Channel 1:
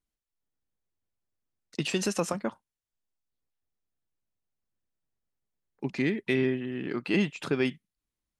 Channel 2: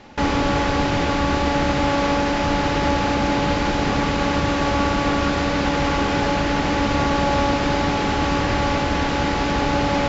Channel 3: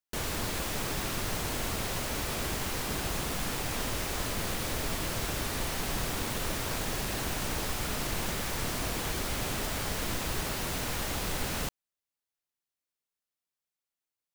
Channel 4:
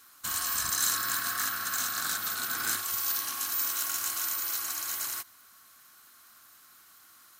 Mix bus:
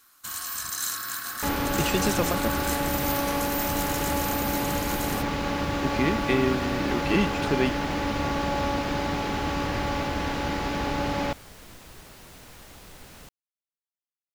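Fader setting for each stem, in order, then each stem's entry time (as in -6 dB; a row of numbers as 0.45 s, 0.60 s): +2.0 dB, -7.5 dB, -14.0 dB, -2.5 dB; 0.00 s, 1.25 s, 1.60 s, 0.00 s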